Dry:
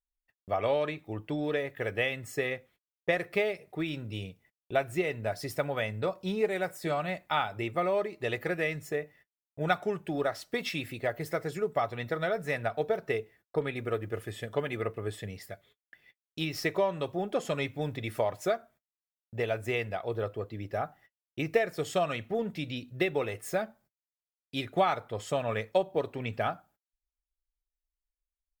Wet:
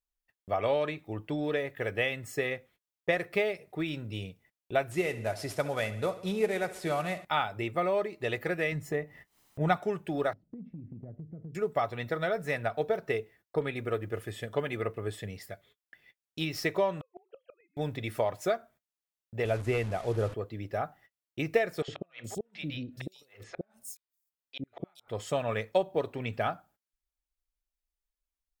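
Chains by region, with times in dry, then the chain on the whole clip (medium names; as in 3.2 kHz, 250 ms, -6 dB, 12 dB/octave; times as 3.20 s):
4.91–7.25 s: CVSD coder 64 kbps + feedback delay 68 ms, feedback 59%, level -15.5 dB
8.72–9.77 s: tilt shelf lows +3.5 dB, about 1.3 kHz + comb 1 ms, depth 30% + upward compressor, threshold -40 dBFS
10.33–11.55 s: resonant low-pass 200 Hz, resonance Q 2.4 + compression 10:1, threshold -39 dBFS
17.01–17.77 s: formants replaced by sine waves + inverted gate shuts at -26 dBFS, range -34 dB
19.45–20.34 s: one-bit delta coder 64 kbps, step -38.5 dBFS + tilt EQ -2 dB/octave + tape noise reduction on one side only decoder only
21.82–25.08 s: inverted gate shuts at -22 dBFS, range -39 dB + three bands offset in time mids, lows, highs 60/420 ms, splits 610/5000 Hz
whole clip: none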